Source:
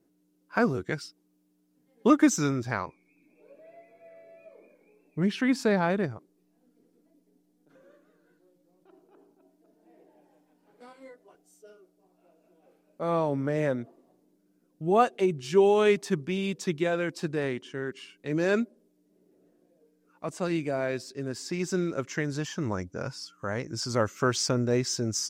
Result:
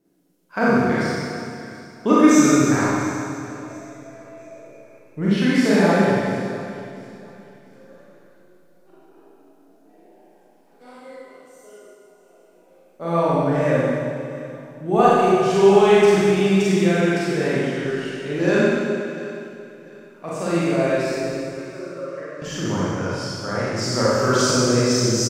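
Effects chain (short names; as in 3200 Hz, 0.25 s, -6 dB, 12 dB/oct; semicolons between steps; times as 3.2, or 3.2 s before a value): 21.23–22.42 double band-pass 800 Hz, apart 0.94 oct; feedback echo 0.694 s, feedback 31%, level -17.5 dB; Schroeder reverb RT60 2.2 s, combs from 32 ms, DRR -9 dB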